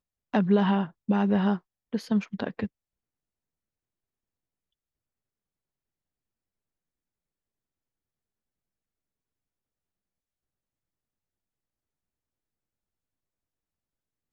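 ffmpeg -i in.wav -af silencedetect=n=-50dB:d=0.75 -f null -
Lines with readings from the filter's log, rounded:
silence_start: 2.67
silence_end: 14.33 | silence_duration: 11.66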